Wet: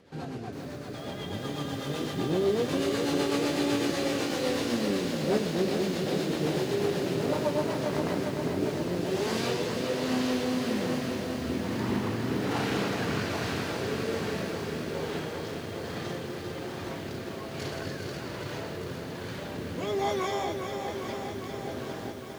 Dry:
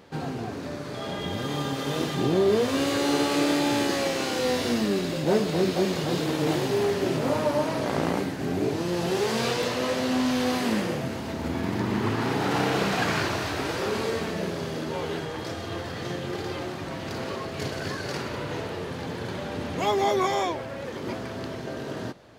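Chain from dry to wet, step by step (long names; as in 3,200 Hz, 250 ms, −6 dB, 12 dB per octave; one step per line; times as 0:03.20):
rotating-speaker cabinet horn 8 Hz, later 1.2 Hz, at 0:07.96
feedback echo at a low word length 404 ms, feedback 80%, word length 8 bits, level −6 dB
level −3.5 dB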